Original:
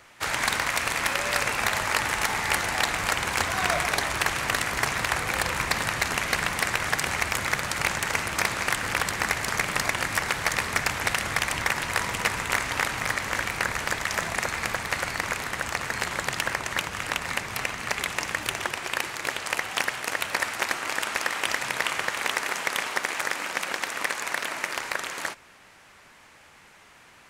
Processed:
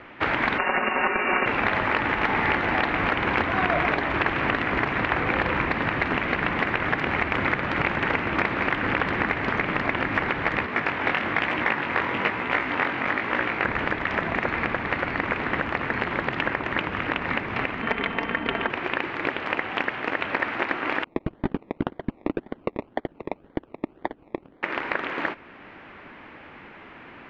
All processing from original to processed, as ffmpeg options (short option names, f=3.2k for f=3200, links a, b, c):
-filter_complex "[0:a]asettb=1/sr,asplit=3[a][b][c];[a]atrim=end=0.584[d];[b]atrim=start=0.58:end=1.46,asetpts=PTS-STARTPTS,afade=t=in:d=0.004:c=qsin,afade=t=out:st=0.876:d=0.004:c=qsin,equalizer=f=120:w=1.8:g=14.5,aecho=1:1:5.6:1,atrim=end_sample=38808,lowpass=f=2.5k:t=q:w=0.5098,lowpass=f=2.5k:t=q:w=0.6013,lowpass=f=2.5k:t=q:w=0.9,lowpass=f=2.5k:t=q:w=2.563,afreqshift=-2900[e];[c]atrim=start=1.456[f];[d][e]acrossfade=d=0.004:c1=hsin:c2=qsin[g];[g][f]acrossfade=d=0.004:c1=qsin:c2=hsin,asettb=1/sr,asplit=3[h][i][j];[h]atrim=end=10.664[k];[i]atrim=start=10.66:end=13.65,asetpts=PTS-STARTPTS,afade=t=in:d=0.004:c=qsin,afade=t=out:st=2.986:d=0.004:c=qsin,highpass=f=210:p=1,flanger=delay=16:depth=7.8:speed=1.1[l];[j]atrim=start=13.646[m];[k][l]acrossfade=d=0.004:c1=hsin:c2=qsin[n];[n][m]acrossfade=d=0.004:c1=qsin:c2=hsin,asettb=1/sr,asplit=3[o][p][q];[o]atrim=end=17.824[r];[p]atrim=start=17.82:end=18.7,asetpts=PTS-STARTPTS,afade=t=in:d=0.004:c=qsin,afade=t=out:st=0.876:d=0.004:c=qsin,aeval=exprs='val(0)+0.0178*sin(2*PI*3100*n/s)':c=same,adynamicsmooth=sensitivity=4:basefreq=1k,aecho=1:1:4.4:0.51,atrim=end_sample=38808[s];[q]atrim=start=18.696[t];[r][s]acrossfade=d=0.004:c1=hsin:c2=qsin[u];[u][t]acrossfade=d=0.004:c1=qsin:c2=hsin,asettb=1/sr,asplit=3[v][w][x];[v]atrim=end=21.044[y];[w]atrim=start=21.04:end=24.63,asetpts=PTS-STARTPTS,afade=t=in:d=0.004:c=qsin,afade=t=out:st=3.586:d=0.004:c=qsin,agate=range=-27dB:threshold=-26dB:ratio=16:release=100:detection=peak,asuperpass=centerf=2700:order=4:qfactor=1.2,acrusher=samples=23:mix=1:aa=0.000001:lfo=1:lforange=13.8:lforate=1.9[z];[x]atrim=start=24.626[aa];[y][z]acrossfade=d=0.004:c1=hsin:c2=qsin[ab];[ab][aa]acrossfade=d=0.004:c1=qsin:c2=hsin,lowpass=f=2.8k:w=0.5412,lowpass=f=2.8k:w=1.3066,equalizer=f=290:w=1.2:g=10,alimiter=limit=-19dB:level=0:latency=1:release=483,volume=7.5dB"